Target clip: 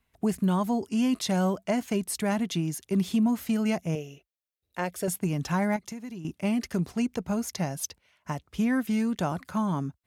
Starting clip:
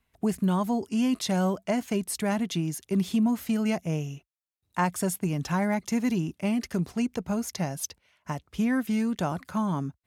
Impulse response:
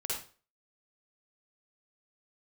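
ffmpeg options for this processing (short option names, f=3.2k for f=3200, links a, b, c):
-filter_complex "[0:a]asettb=1/sr,asplit=3[a][b][c];[a]atrim=end=3.954[d];[b]atrim=start=3.95:end=5.08,asetpts=PTS-STARTPTS,afade=t=in:d=0.004:c=qsin,afade=t=out:st=1.126:d=0.004:c=qsin,equalizer=f=125:t=o:w=1:g=-11,equalizer=f=250:t=o:w=1:g=-5,equalizer=f=500:t=o:w=1:g=7,equalizer=f=1k:t=o:w=1:g=-11,equalizer=f=8k:t=o:w=1:g=-7[e];[c]atrim=start=5.076[f];[d][e]acrossfade=d=0.004:c1=hsin:c2=qsin[g];[g][f]acrossfade=d=0.004:c1=qsin:c2=hsin,asettb=1/sr,asplit=3[h][i][j];[h]atrim=end=5.764[k];[i]atrim=start=5.76:end=6.25,asetpts=PTS-STARTPTS,afade=t=in:d=0.004:c=qsin,afade=t=out:st=0.486:d=0.004:c=qsin,acompressor=threshold=-36dB:ratio=10[l];[j]atrim=start=6.246[m];[k][l]acrossfade=d=0.004:c1=hsin:c2=qsin[n];[n][m]acrossfade=d=0.004:c1=qsin:c2=hsin"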